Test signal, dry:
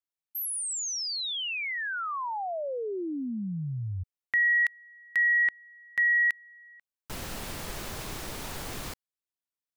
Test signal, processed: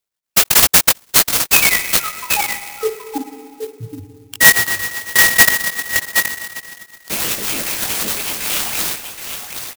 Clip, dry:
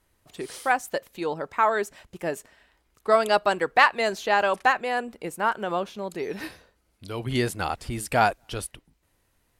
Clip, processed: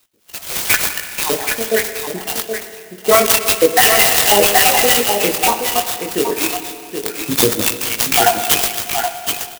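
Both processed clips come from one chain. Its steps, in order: random spectral dropouts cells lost 76%; resonant high shelf 2100 Hz +11 dB, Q 1.5; spectral noise reduction 20 dB; chorus 0.26 Hz, delay 18.5 ms, depth 3.9 ms; HPF 220 Hz 12 dB/oct; LFO notch saw up 5.4 Hz 820–1700 Hz; on a send: echo 0.773 s -7.5 dB; on the sum: spring tank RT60 2.3 s, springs 54/59 ms, chirp 70 ms, DRR 8 dB; maximiser +20 dB; clock jitter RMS 0.072 ms

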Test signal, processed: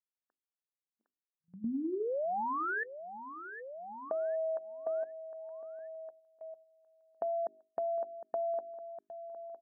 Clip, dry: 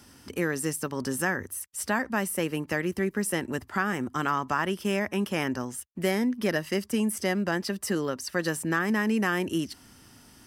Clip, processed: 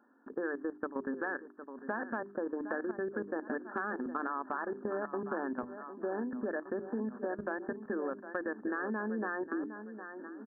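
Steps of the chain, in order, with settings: brick-wall FIR band-pass 210–1800 Hz; feedback echo 0.759 s, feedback 39%, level -10 dB; level quantiser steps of 16 dB; gate -59 dBFS, range -6 dB; notches 50/100/150/200/250/300/350/400 Hz; compressor, threshold -35 dBFS; gain +3 dB

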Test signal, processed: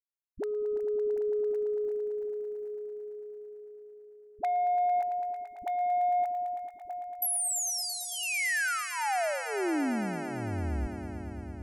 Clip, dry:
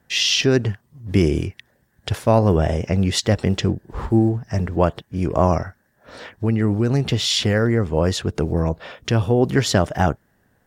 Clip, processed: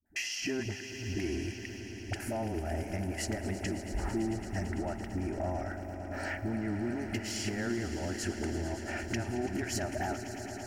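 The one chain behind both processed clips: gate -51 dBFS, range -19 dB; notch 1100 Hz, Q 8.5; limiter -13.5 dBFS; compressor 4:1, threshold -33 dBFS; fixed phaser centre 730 Hz, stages 8; soft clip -27.5 dBFS; dispersion highs, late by 59 ms, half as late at 400 Hz; on a send: swelling echo 0.112 s, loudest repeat 5, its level -14 dB; on the sum: gain +4.5 dB

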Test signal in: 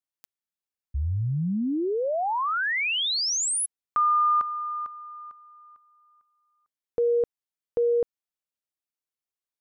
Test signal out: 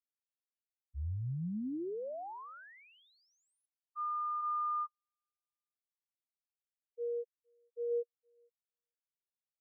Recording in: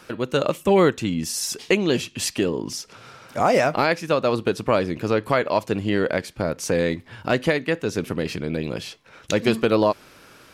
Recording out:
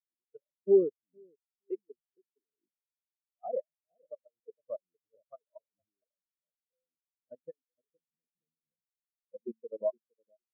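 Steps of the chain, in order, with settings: level quantiser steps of 18 dB; analogue delay 0.463 s, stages 2048, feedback 35%, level -8.5 dB; spectral expander 4:1; gain -6 dB

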